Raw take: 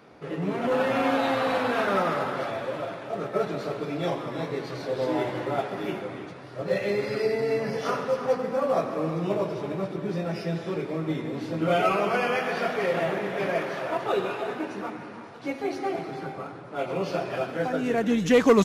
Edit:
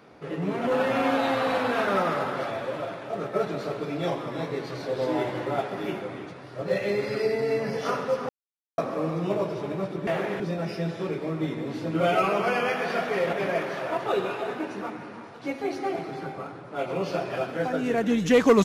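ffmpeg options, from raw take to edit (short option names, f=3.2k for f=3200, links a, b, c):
-filter_complex "[0:a]asplit=6[a][b][c][d][e][f];[a]atrim=end=8.29,asetpts=PTS-STARTPTS,afade=t=out:st=8.286:d=0.004:c=hsin[g];[b]atrim=start=8.29:end=8.78,asetpts=PTS-STARTPTS,volume=0[h];[c]atrim=start=8.78:end=10.072,asetpts=PTS-STARTPTS,afade=t=in:d=0.004:c=hsin[i];[d]atrim=start=12.998:end=13.332[j];[e]atrim=start=10.068:end=13.002[k];[f]atrim=start=13.328[l];[g][h][i]concat=n=3:v=0:a=1[m];[m][j]acrossfade=d=0.004:c1=hsin:c2=hsin[n];[n][k]acrossfade=d=0.004:c1=hsin:c2=hsin[o];[o][l]acrossfade=d=0.004:c1=hsin:c2=hsin"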